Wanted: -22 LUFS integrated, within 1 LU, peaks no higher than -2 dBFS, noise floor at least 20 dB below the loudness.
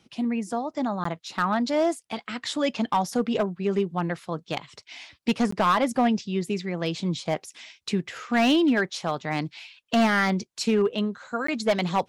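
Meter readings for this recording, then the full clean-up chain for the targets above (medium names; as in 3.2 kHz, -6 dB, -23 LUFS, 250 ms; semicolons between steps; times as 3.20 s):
clipped samples 1.0%; clipping level -15.5 dBFS; dropouts 3; longest dropout 14 ms; loudness -26.0 LUFS; peak level -15.5 dBFS; loudness target -22.0 LUFS
-> clip repair -15.5 dBFS; interpolate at 1.04/5.51/11.47 s, 14 ms; trim +4 dB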